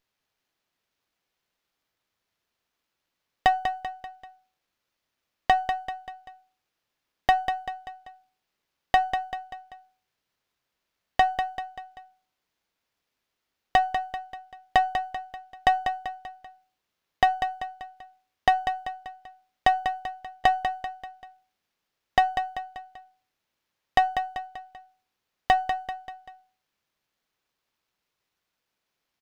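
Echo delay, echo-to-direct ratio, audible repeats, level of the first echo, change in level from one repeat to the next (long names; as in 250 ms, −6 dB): 194 ms, −7.0 dB, 4, −8.0 dB, −6.5 dB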